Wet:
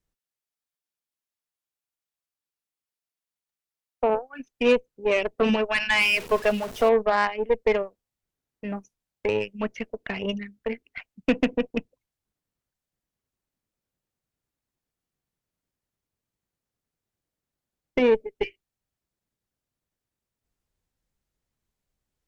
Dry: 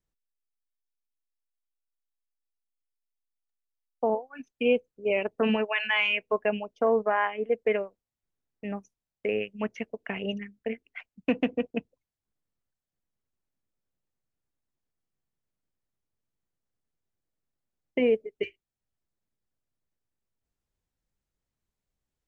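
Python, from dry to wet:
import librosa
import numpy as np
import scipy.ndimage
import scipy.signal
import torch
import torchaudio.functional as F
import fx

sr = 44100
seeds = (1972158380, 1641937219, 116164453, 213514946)

y = fx.zero_step(x, sr, step_db=-36.0, at=(6.01, 6.89))
y = fx.cheby_harmonics(y, sr, harmonics=(6,), levels_db=(-21,), full_scale_db=-12.0)
y = F.gain(torch.from_numpy(y), 3.5).numpy()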